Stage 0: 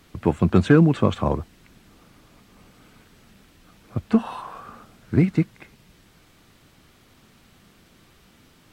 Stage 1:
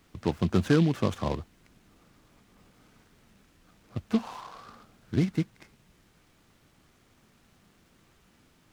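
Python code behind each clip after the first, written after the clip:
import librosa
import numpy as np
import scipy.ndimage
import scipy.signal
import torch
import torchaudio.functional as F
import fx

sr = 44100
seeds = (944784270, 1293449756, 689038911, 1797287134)

y = fx.noise_mod_delay(x, sr, seeds[0], noise_hz=2800.0, depth_ms=0.043)
y = y * 10.0 ** (-7.5 / 20.0)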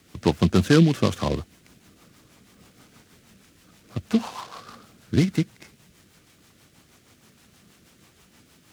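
y = fx.high_shelf(x, sr, hz=3300.0, db=7.0)
y = fx.rotary(y, sr, hz=6.3)
y = scipy.signal.sosfilt(scipy.signal.butter(2, 63.0, 'highpass', fs=sr, output='sos'), y)
y = y * 10.0 ** (7.5 / 20.0)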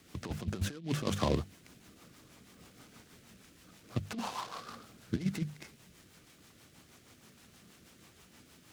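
y = fx.hum_notches(x, sr, base_hz=50, count=4)
y = fx.over_compress(y, sr, threshold_db=-24.0, ratio=-0.5)
y = y * 10.0 ** (-8.0 / 20.0)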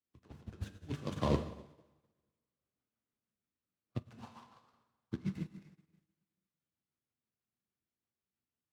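y = fx.high_shelf(x, sr, hz=4300.0, db=-9.0)
y = fx.rev_plate(y, sr, seeds[1], rt60_s=2.7, hf_ratio=0.8, predelay_ms=0, drr_db=1.5)
y = fx.upward_expand(y, sr, threshold_db=-51.0, expansion=2.5)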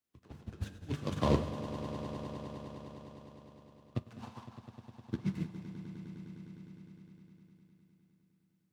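y = fx.echo_swell(x, sr, ms=102, loudest=5, wet_db=-15.5)
y = y * 10.0 ** (3.0 / 20.0)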